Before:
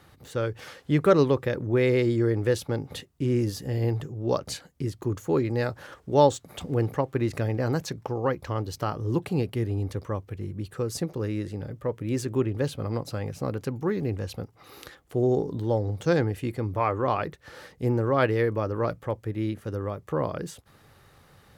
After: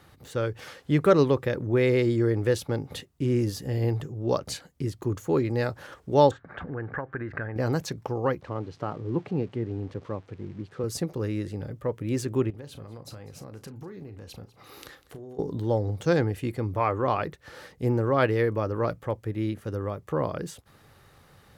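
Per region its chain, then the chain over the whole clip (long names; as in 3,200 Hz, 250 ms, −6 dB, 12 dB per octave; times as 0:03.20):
0:06.31–0:07.56: downward compressor 3 to 1, threshold −33 dBFS + low-pass with resonance 1,600 Hz, resonance Q 6.9
0:08.41–0:10.84: spike at every zero crossing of −28 dBFS + high-pass filter 130 Hz + head-to-tape spacing loss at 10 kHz 38 dB
0:12.50–0:15.39: downward compressor 12 to 1, threshold −38 dBFS + double-tracking delay 36 ms −11.5 dB + single-tap delay 198 ms −19 dB
whole clip: no processing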